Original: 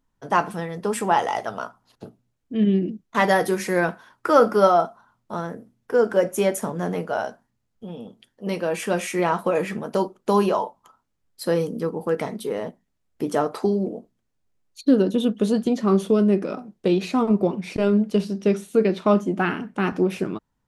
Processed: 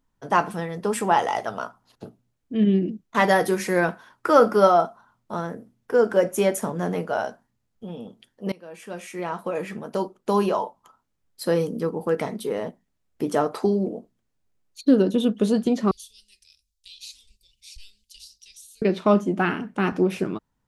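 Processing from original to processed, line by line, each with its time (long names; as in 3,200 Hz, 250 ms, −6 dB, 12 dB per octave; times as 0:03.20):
0:08.52–0:11.89: fade in equal-power, from −22.5 dB
0:15.91–0:18.82: inverse Chebyshev band-stop filter 170–1,300 Hz, stop band 60 dB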